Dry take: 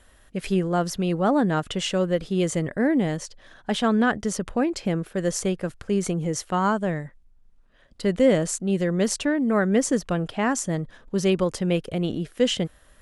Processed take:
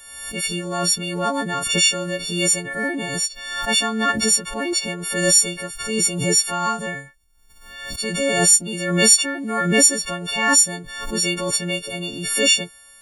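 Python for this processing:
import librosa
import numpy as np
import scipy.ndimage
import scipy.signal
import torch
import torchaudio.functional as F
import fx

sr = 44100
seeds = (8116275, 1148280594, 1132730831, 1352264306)

y = fx.freq_snap(x, sr, grid_st=4)
y = fx.tilt_shelf(y, sr, db=-5.5, hz=920.0)
y = fx.pre_swell(y, sr, db_per_s=51.0)
y = y * 10.0 ** (-2.0 / 20.0)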